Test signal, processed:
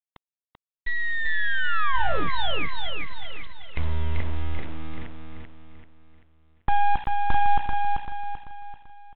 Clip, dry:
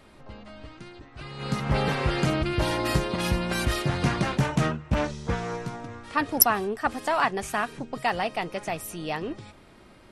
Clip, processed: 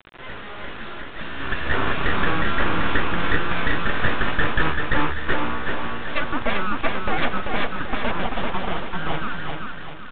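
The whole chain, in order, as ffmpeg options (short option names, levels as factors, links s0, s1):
-filter_complex "[0:a]afftfilt=real='real(if(between(b,1,1008),(2*floor((b-1)/48)+1)*48-b,b),0)':imag='imag(if(between(b,1,1008),(2*floor((b-1)/48)+1)*48-b,b),0)*if(between(b,1,1008),-1,1)':win_size=2048:overlap=0.75,bandreject=f=60:t=h:w=6,bandreject=f=120:t=h:w=6,bandreject=f=180:t=h:w=6,bandreject=f=240:t=h:w=6,bandreject=f=300:t=h:w=6,bandreject=f=360:t=h:w=6,bandreject=f=420:t=h:w=6,bandreject=f=480:t=h:w=6,bandreject=f=540:t=h:w=6,acrossover=split=2700[s0][s1];[s1]acompressor=threshold=0.0141:ratio=4:attack=1:release=60[s2];[s0][s2]amix=inputs=2:normalize=0,equalizer=f=460:t=o:w=1.7:g=8,asplit=2[s3][s4];[s4]acompressor=threshold=0.0398:ratio=20,volume=0.944[s5];[s3][s5]amix=inputs=2:normalize=0,aeval=exprs='abs(val(0))':c=same,acrusher=bits=5:mix=0:aa=0.000001,asplit=2[s6][s7];[s7]aecho=0:1:388|776|1164|1552|1940:0.631|0.265|0.111|0.0467|0.0196[s8];[s6][s8]amix=inputs=2:normalize=0,volume=0.891" -ar 8000 -c:a pcm_mulaw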